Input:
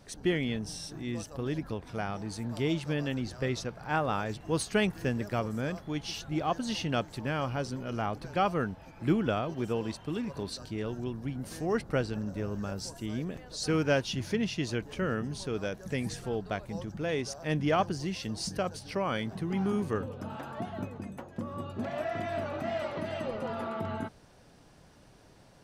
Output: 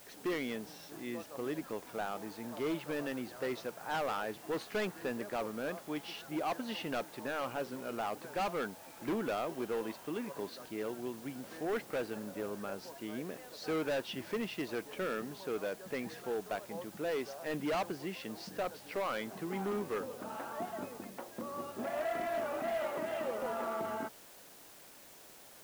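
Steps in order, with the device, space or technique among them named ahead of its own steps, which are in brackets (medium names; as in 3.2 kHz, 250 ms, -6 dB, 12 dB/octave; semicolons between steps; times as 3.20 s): aircraft radio (band-pass 330–2500 Hz; hard clipper -30.5 dBFS, distortion -8 dB; white noise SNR 18 dB)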